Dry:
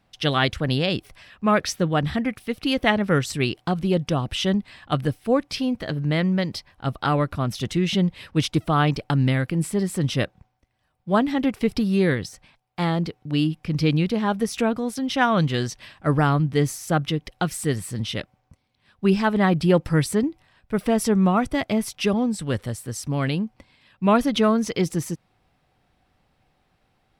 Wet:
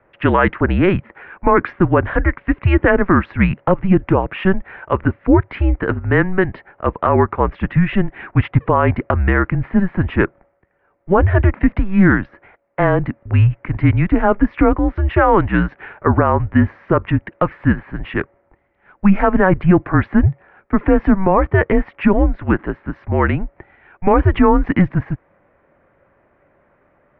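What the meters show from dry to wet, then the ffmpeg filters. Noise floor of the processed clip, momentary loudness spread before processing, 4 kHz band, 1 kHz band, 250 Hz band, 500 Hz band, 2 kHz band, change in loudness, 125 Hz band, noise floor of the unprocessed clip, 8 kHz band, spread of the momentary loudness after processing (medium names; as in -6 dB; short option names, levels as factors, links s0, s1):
-59 dBFS, 8 LU, under -10 dB, +7.0 dB, +6.0 dB, +6.5 dB, +7.5 dB, +6.5 dB, +7.0 dB, -68 dBFS, under -40 dB, 8 LU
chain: -af "highpass=f=270:t=q:w=0.5412,highpass=f=270:t=q:w=1.307,lowpass=f=2200:t=q:w=0.5176,lowpass=f=2200:t=q:w=0.7071,lowpass=f=2200:t=q:w=1.932,afreqshift=-190,alimiter=level_in=5.62:limit=0.891:release=50:level=0:latency=1,volume=0.794"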